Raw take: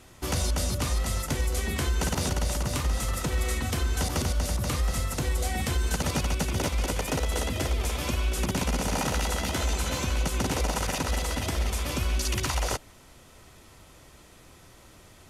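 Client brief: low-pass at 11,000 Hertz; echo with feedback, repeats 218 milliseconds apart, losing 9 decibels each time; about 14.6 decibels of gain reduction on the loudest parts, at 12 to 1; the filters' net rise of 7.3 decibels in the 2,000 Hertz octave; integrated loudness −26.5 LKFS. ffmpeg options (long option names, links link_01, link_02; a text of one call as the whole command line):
ffmpeg -i in.wav -af "lowpass=11000,equalizer=frequency=2000:width_type=o:gain=9,acompressor=threshold=-37dB:ratio=12,aecho=1:1:218|436|654|872:0.355|0.124|0.0435|0.0152,volume=14dB" out.wav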